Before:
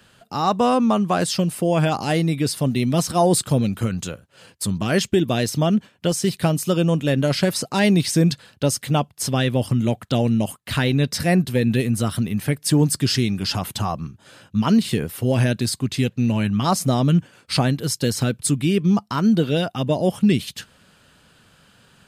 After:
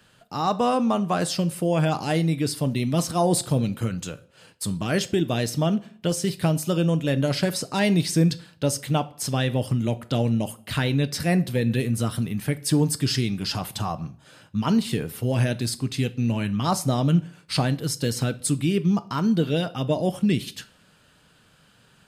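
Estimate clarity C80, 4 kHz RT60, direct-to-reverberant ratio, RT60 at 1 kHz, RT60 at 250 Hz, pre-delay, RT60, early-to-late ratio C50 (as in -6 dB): 23.5 dB, 0.40 s, 12.0 dB, 0.50 s, 0.55 s, 7 ms, 0.50 s, 19.0 dB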